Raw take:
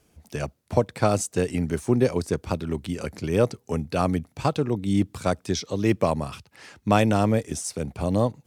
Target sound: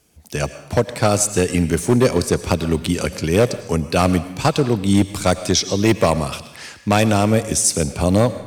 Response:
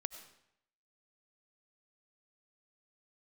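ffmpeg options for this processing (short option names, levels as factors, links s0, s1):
-filter_complex "[0:a]dynaudnorm=f=140:g=5:m=2.99,asoftclip=type=hard:threshold=0.398,asplit=2[s0][s1];[1:a]atrim=start_sample=2205,asetrate=39249,aresample=44100,highshelf=f=2300:g=11[s2];[s1][s2]afir=irnorm=-1:irlink=0,volume=1.26[s3];[s0][s3]amix=inputs=2:normalize=0,volume=0.531"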